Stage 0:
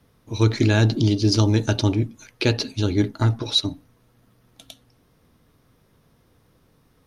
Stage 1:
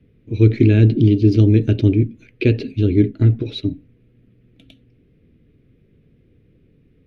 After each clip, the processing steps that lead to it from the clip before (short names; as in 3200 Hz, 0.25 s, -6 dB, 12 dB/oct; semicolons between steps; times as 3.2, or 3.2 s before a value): EQ curve 420 Hz 0 dB, 950 Hz -27 dB, 2400 Hz -4 dB, 5700 Hz -27 dB; gain +6 dB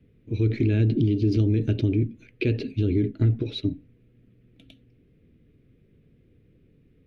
limiter -10 dBFS, peak gain reduction 8 dB; gain -4 dB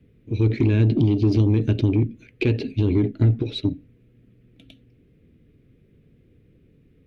added harmonics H 3 -32 dB, 4 -28 dB, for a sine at -13.5 dBFS; gain +3.5 dB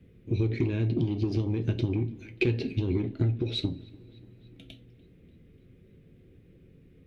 compressor 6:1, threshold -24 dBFS, peak gain reduction 10 dB; dark delay 0.293 s, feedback 61%, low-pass 3300 Hz, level -23 dB; two-slope reverb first 0.22 s, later 1.8 s, from -28 dB, DRR 6 dB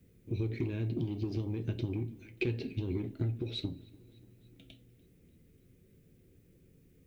added noise blue -71 dBFS; gain -7 dB